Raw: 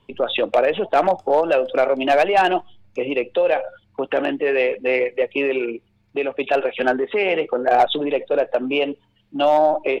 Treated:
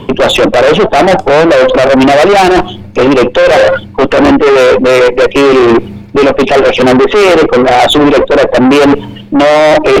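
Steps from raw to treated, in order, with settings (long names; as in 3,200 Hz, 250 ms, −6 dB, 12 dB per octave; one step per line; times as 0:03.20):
parametric band 280 Hz +11.5 dB 2.7 octaves
reversed playback
downward compressor 16 to 1, threshold −21 dBFS, peak gain reduction 17 dB
reversed playback
tube saturation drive 33 dB, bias 0.55
boost into a limiter +35.5 dB
level −1 dB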